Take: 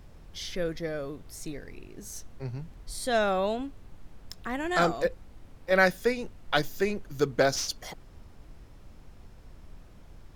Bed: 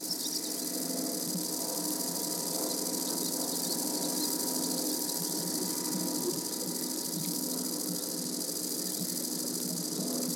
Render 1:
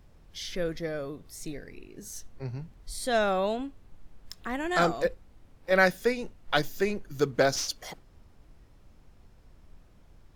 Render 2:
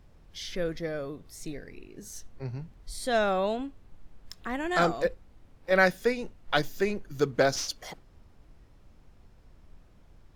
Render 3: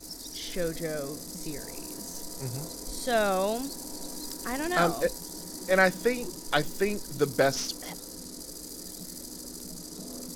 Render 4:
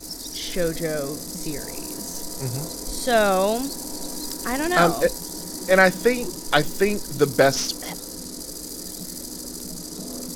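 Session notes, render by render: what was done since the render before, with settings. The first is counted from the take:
noise print and reduce 6 dB
treble shelf 7.1 kHz -4 dB
add bed -7.5 dB
trim +7 dB; peak limiter -3 dBFS, peak gain reduction 1 dB

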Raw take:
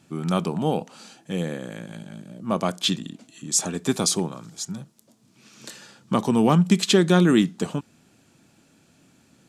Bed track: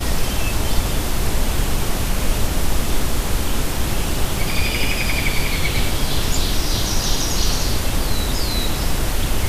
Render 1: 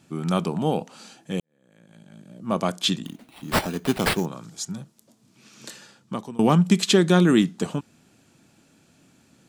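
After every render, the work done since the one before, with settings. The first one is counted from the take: 1.40–2.55 s: fade in quadratic; 3.05–4.26 s: sample-rate reducer 6.5 kHz; 5.70–6.39 s: fade out, to -23.5 dB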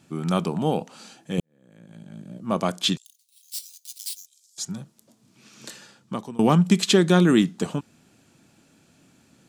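1.38–2.38 s: bass shelf 440 Hz +7.5 dB; 2.97–4.58 s: inverse Chebyshev high-pass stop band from 850 Hz, stop band 80 dB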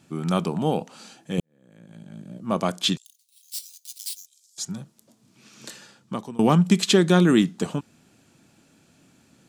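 no audible change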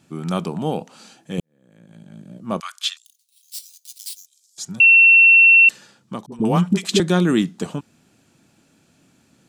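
2.60–3.55 s: Chebyshev high-pass 1.2 kHz, order 4; 4.80–5.69 s: bleep 2.71 kHz -7 dBFS; 6.26–7.00 s: phase dispersion highs, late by 60 ms, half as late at 480 Hz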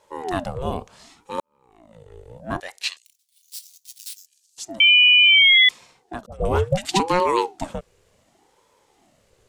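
ring modulator with a swept carrier 490 Hz, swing 50%, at 0.69 Hz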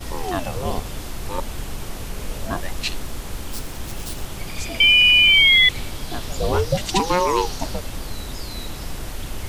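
add bed track -10.5 dB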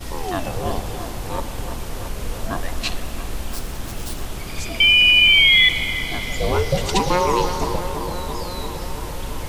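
bucket-brigade echo 337 ms, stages 4096, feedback 76%, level -9 dB; spring tank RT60 3.8 s, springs 49 ms, chirp 80 ms, DRR 10.5 dB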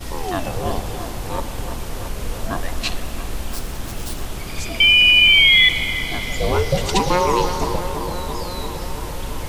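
trim +1 dB

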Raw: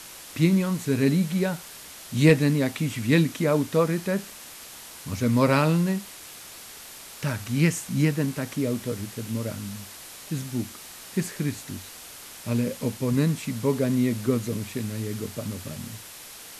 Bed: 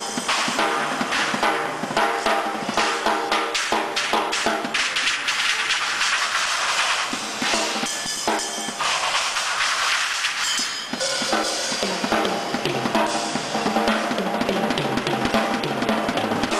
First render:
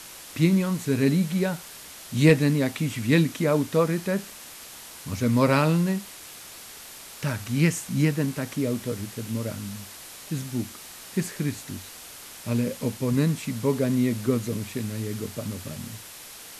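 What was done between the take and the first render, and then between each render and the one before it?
no audible change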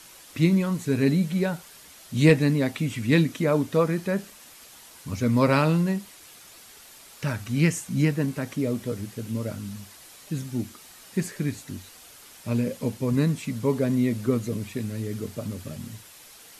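noise reduction 7 dB, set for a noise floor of -43 dBFS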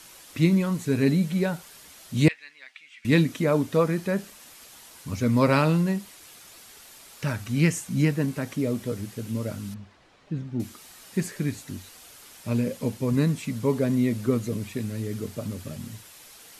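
2.28–3.05 s: ladder band-pass 2.6 kHz, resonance 30%; 9.74–10.60 s: tape spacing loss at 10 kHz 31 dB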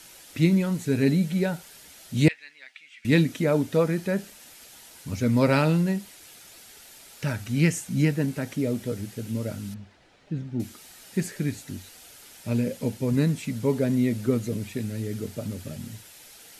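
peaking EQ 1.1 kHz -10.5 dB 0.2 oct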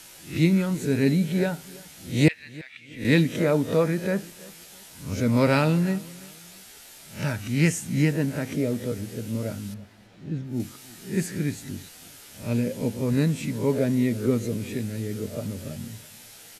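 reverse spectral sustain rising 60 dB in 0.35 s; feedback delay 331 ms, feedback 33%, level -22 dB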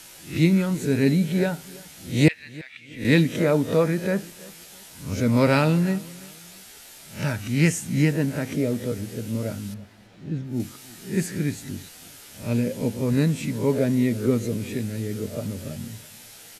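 trim +1.5 dB

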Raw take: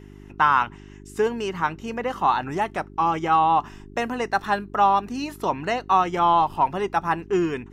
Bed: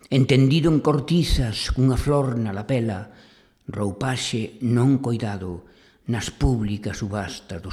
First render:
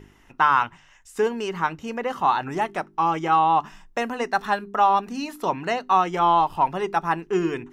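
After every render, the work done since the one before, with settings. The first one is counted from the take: de-hum 50 Hz, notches 8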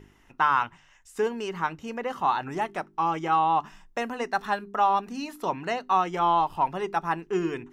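trim -4 dB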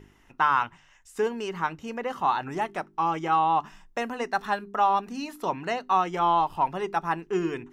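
no audible change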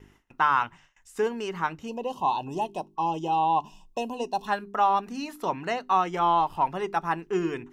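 1.88–4.48 s: time-frequency box 1.1–2.5 kHz -24 dB; gate with hold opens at -46 dBFS

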